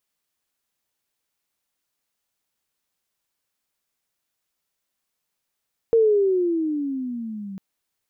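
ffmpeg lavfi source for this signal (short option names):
-f lavfi -i "aevalsrc='pow(10,(-12.5-19*t/1.65)/20)*sin(2*PI*464*1.65/(-15.5*log(2)/12)*(exp(-15.5*log(2)/12*t/1.65)-1))':d=1.65:s=44100"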